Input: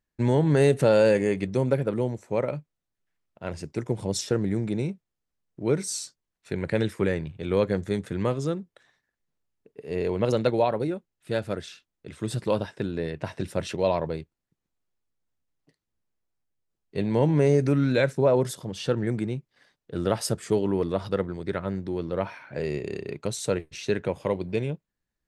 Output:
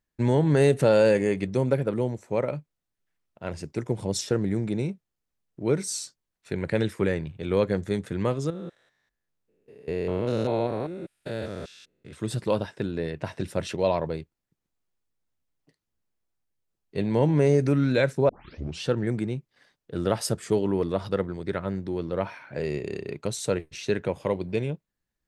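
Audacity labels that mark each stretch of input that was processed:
8.500000	12.130000	spectrogram pixelated in time every 200 ms
18.290000	18.290000	tape start 0.53 s

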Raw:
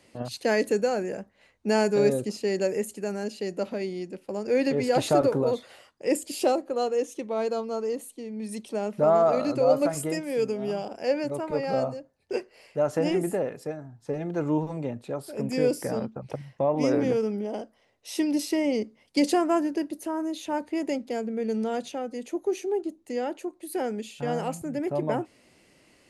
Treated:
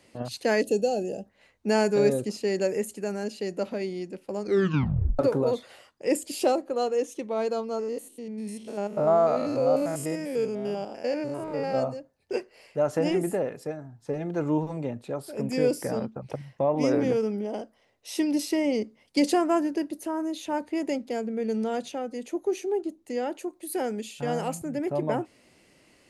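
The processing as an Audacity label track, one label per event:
0.620000	1.260000	time-frequency box 860–2500 Hz -17 dB
4.400000	4.400000	tape stop 0.79 s
7.790000	11.750000	spectrogram pixelated in time every 100 ms
23.320000	24.590000	treble shelf 5.2 kHz +5 dB

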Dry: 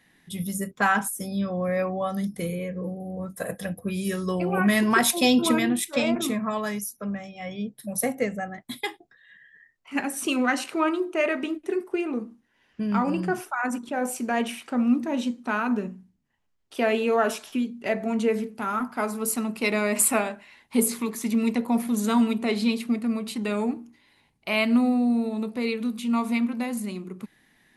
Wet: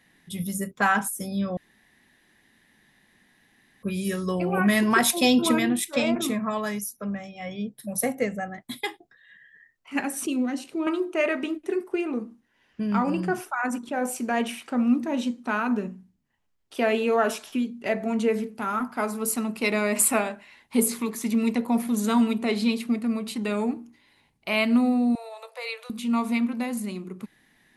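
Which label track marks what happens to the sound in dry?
1.570000	3.830000	room tone
10.260000	10.870000	FFT filter 300 Hz 0 dB, 1.4 kHz -18 dB, 3.4 kHz -8 dB
25.150000	25.900000	steep high-pass 500 Hz 72 dB/octave

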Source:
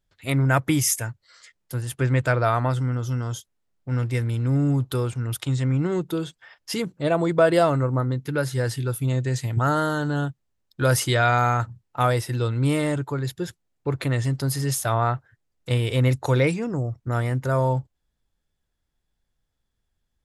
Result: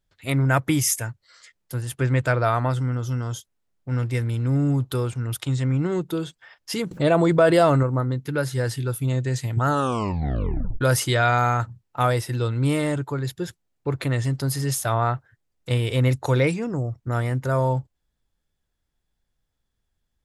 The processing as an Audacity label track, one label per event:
6.910000	7.830000	level flattener amount 50%
9.690000	9.690000	tape stop 1.12 s

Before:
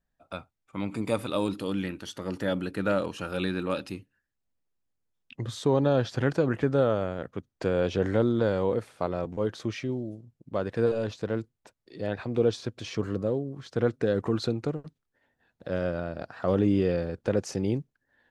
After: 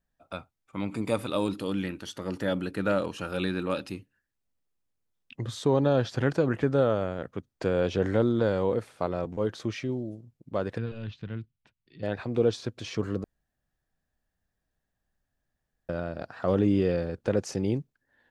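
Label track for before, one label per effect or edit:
10.780000	12.030000	FFT filter 160 Hz 0 dB, 520 Hz -18 dB, 3 kHz -1 dB, 7.9 kHz -23 dB
13.240000	15.890000	room tone

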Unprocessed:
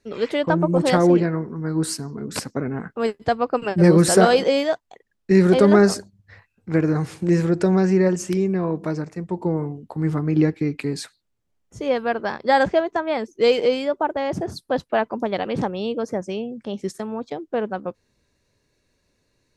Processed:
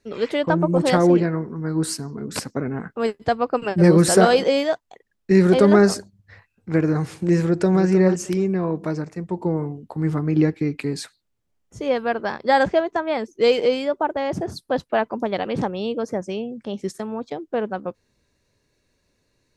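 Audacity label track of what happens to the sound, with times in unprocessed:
7.430000	7.830000	echo throw 310 ms, feedback 15%, level -9 dB

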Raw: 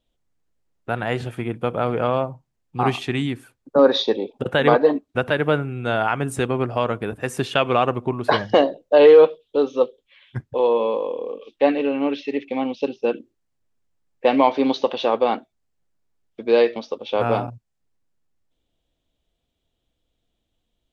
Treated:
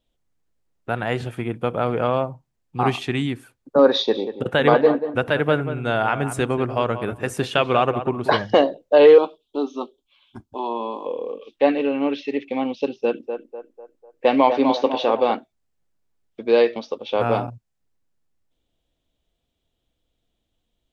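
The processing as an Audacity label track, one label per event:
3.920000	8.300000	filtered feedback delay 186 ms, feedback 17%, low-pass 1.9 kHz, level -10 dB
9.180000	11.060000	static phaser centre 500 Hz, stages 6
12.980000	15.320000	band-passed feedback delay 248 ms, feedback 51%, band-pass 730 Hz, level -5.5 dB

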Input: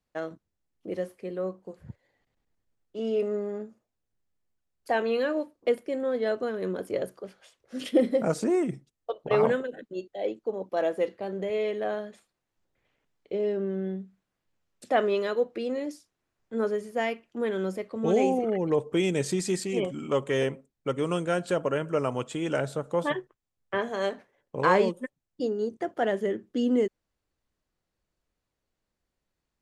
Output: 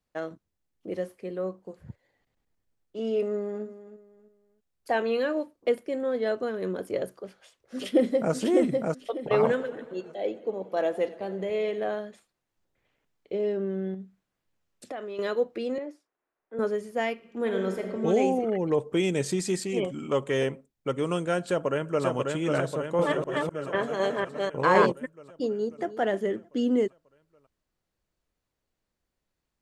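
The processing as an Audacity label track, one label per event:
3.230000	3.640000	echo throw 320 ms, feedback 30%, level -14 dB
7.160000	8.340000	echo throw 600 ms, feedback 25%, level -2.5 dB
9.350000	11.890000	modulated delay 92 ms, feedback 74%, depth 71 cents, level -19 dB
13.940000	15.190000	compression, threshold -34 dBFS
15.780000	16.590000	three-band isolator lows -21 dB, under 310 Hz, highs -18 dB, over 2.2 kHz
17.130000	17.840000	reverb throw, RT60 1.7 s, DRR 3.5 dB
21.450000	22.060000	echo throw 540 ms, feedback 65%, level -3 dB
22.740000	24.920000	chunks repeated in reverse 251 ms, level -1 dB
25.470000	25.950000	echo throw 310 ms, feedback 15%, level -14 dB

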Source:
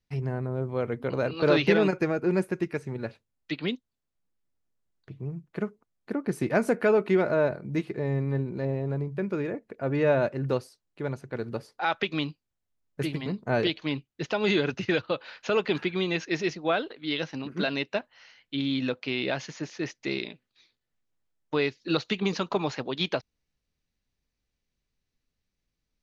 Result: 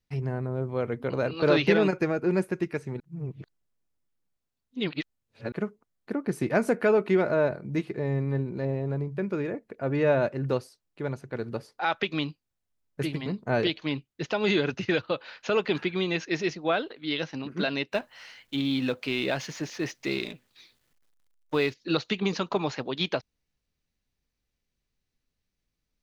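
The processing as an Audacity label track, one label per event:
3.000000	5.520000	reverse
17.920000	21.740000	companding laws mixed up coded by mu

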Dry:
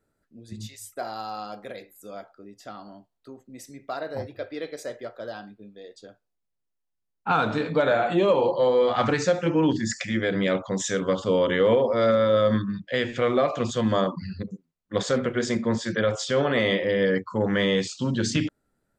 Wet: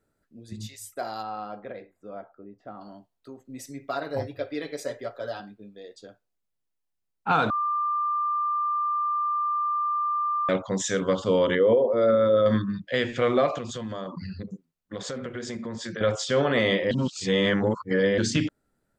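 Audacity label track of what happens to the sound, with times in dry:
1.220000	2.800000	low-pass 2.4 kHz -> 1.1 kHz
3.440000	5.400000	comb 7.2 ms, depth 76%
7.500000	10.490000	bleep 1.19 kHz -23 dBFS
11.550000	12.460000	resonances exaggerated exponent 1.5
13.580000	16.010000	compression 5:1, threshold -31 dBFS
16.910000	18.180000	reverse

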